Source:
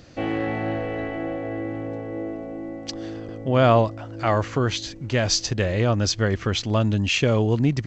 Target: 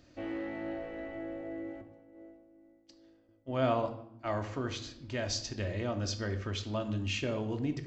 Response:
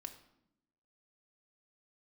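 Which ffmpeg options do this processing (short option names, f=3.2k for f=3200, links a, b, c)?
-filter_complex "[0:a]asettb=1/sr,asplit=3[a][b][c];[a]atrim=end=1.814[d];[b]atrim=start=1.81:end=4.39,asetpts=PTS-STARTPTS,afade=t=in:d=0.004:c=qsin,afade=t=out:st=2.576:d=0.004:c=qsin,agate=range=-33dB:threshold=-21dB:ratio=3:detection=peak[e];[c]atrim=start=4.386[f];[d][e]acrossfade=d=0.004:c1=hsin:c2=qsin[g];[g][f]acrossfade=d=0.004:c1=qsin:c2=hsin[h];[1:a]atrim=start_sample=2205[i];[h][i]afir=irnorm=-1:irlink=0,volume=-8.5dB"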